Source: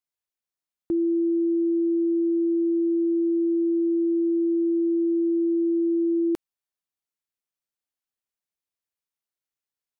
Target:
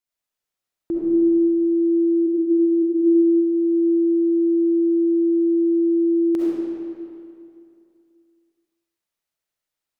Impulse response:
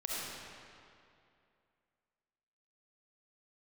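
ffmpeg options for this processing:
-filter_complex "[0:a]asplit=3[a][b][c];[a]afade=t=out:st=2.26:d=0.02[d];[b]highpass=f=340:w=0.5412,highpass=f=340:w=1.3066,afade=t=in:st=2.26:d=0.02,afade=t=out:st=2.82:d=0.02[e];[c]afade=t=in:st=2.82:d=0.02[f];[d][e][f]amix=inputs=3:normalize=0[g];[1:a]atrim=start_sample=2205[h];[g][h]afir=irnorm=-1:irlink=0,volume=3.5dB"

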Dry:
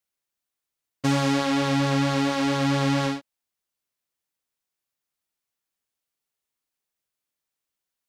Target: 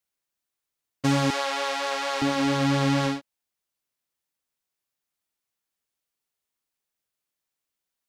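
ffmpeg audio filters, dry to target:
-filter_complex "[0:a]asettb=1/sr,asplit=3[a][b][c];[a]atrim=end=1.304[d];[b]atrim=start=1.3:end=2.22,asetpts=PTS-STARTPTS,afade=t=in:d=0.004:c=qsin,afade=t=out:st=0.916:d=0.004:c=qsin,highpass=f=500:w=0.5412,highpass=f=500:w=1.3066[e];[c]atrim=start=2.216[f];[d][e]acrossfade=d=0.004:c1=hsin:c2=qsin[g];[g][f]acrossfade=d=0.004:c1=qsin:c2=hsin"

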